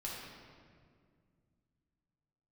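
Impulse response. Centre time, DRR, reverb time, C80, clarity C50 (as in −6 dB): 101 ms, −5.0 dB, 2.1 s, 1.5 dB, −1.0 dB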